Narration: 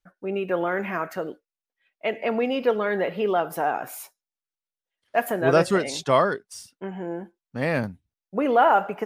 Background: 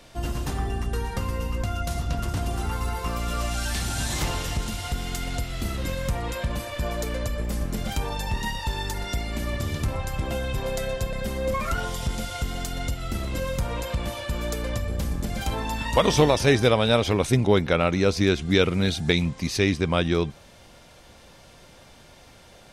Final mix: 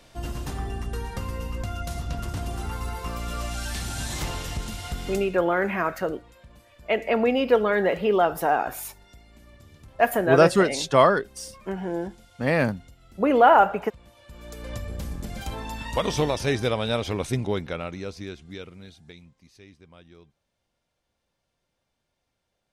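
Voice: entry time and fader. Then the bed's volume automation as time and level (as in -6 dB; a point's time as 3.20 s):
4.85 s, +2.5 dB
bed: 5.12 s -3.5 dB
5.46 s -22.5 dB
14.12 s -22.5 dB
14.74 s -5.5 dB
17.35 s -5.5 dB
19.42 s -28.5 dB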